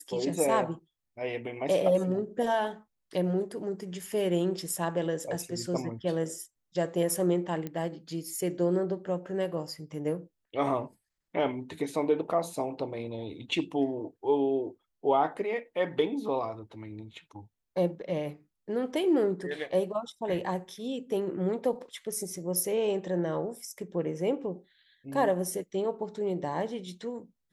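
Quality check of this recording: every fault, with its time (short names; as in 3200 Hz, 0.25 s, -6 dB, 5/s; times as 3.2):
7.67 pop -22 dBFS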